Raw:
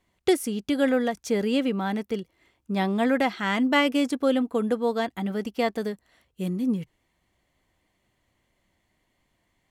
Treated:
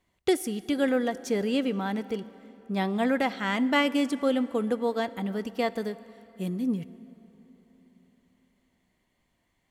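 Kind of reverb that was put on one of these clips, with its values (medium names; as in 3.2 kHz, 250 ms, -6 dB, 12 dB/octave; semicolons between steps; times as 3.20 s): plate-style reverb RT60 3.9 s, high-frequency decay 0.6×, DRR 16 dB; trim -2.5 dB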